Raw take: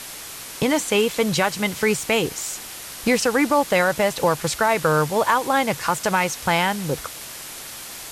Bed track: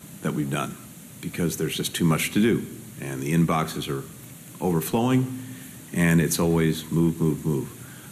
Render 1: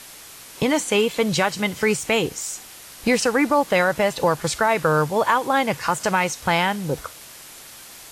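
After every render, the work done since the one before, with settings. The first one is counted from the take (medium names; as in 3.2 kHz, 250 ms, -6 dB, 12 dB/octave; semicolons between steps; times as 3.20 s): noise print and reduce 6 dB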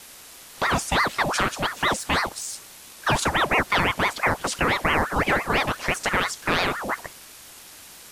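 vibrato 2.3 Hz 14 cents; ring modulator with a swept carrier 1 kHz, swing 65%, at 5.9 Hz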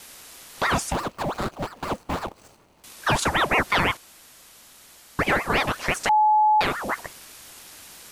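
0.92–2.84 s: median filter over 25 samples; 3.97–5.19 s: room tone; 6.09–6.61 s: bleep 854 Hz -14.5 dBFS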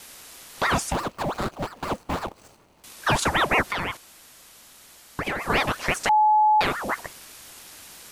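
3.61–5.47 s: compression, threshold -23 dBFS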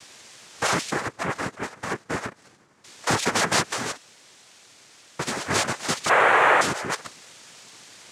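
noise-vocoded speech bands 3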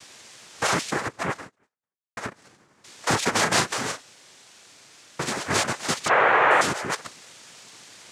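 1.33–2.17 s: fade out exponential; 3.32–5.33 s: doubling 37 ms -7 dB; 6.08–6.51 s: distance through air 160 m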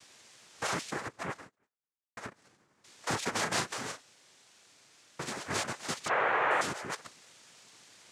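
trim -10 dB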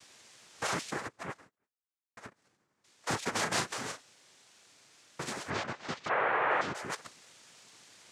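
1.07–3.28 s: upward expansion, over -46 dBFS; 5.50–6.75 s: distance through air 160 m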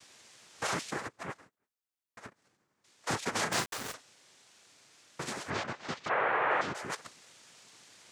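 3.52–3.94 s: small samples zeroed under -37 dBFS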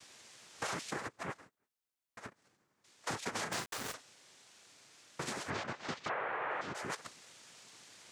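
compression 6:1, threshold -35 dBFS, peak gain reduction 10 dB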